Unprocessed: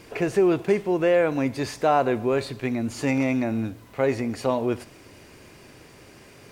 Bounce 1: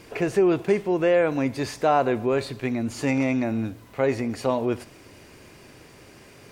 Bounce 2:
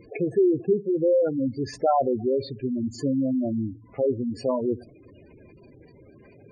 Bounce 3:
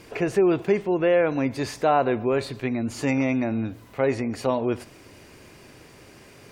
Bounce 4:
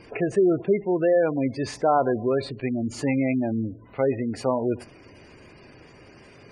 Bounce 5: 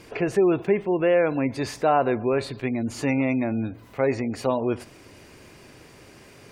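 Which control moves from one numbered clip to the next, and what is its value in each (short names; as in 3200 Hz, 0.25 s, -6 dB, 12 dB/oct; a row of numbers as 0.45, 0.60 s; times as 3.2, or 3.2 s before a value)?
spectral gate, under each frame's peak: -60, -10, -45, -20, -35 dB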